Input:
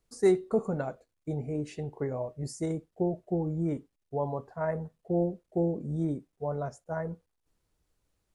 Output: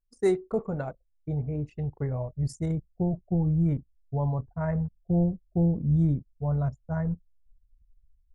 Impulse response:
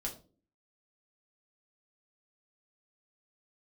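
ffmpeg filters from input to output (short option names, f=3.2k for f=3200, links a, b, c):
-af "asubboost=boost=11:cutoff=120,anlmdn=0.158"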